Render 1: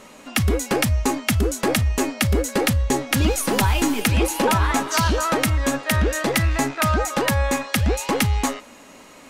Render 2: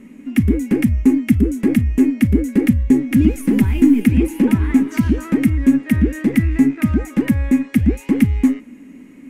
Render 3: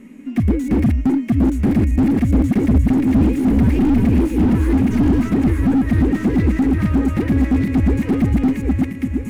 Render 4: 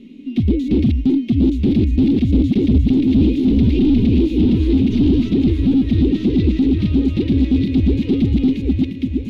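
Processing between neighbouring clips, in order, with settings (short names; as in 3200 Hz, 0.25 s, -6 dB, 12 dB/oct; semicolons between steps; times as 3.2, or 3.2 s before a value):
EQ curve 130 Hz 0 dB, 260 Hz +12 dB, 610 Hz -16 dB, 1300 Hz -16 dB, 2100 Hz -4 dB, 4100 Hz -22 dB, 11000 Hz -11 dB; gain +2 dB
regenerating reverse delay 0.638 s, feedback 57%, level -3.5 dB; slew limiter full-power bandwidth 65 Hz
EQ curve 210 Hz 0 dB, 380 Hz +3 dB, 670 Hz -12 dB, 1700 Hz -18 dB, 2600 Hz +2 dB, 3700 Hz +13 dB, 7900 Hz -16 dB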